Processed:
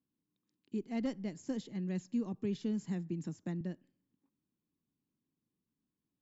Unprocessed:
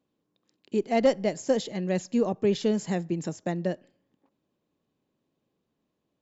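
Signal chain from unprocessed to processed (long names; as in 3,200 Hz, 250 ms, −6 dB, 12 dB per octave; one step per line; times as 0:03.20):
drawn EQ curve 280 Hz 0 dB, 600 Hz −17 dB, 970 Hz −8 dB
0:01.43–0:03.61: multiband upward and downward compressor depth 40%
level −7.5 dB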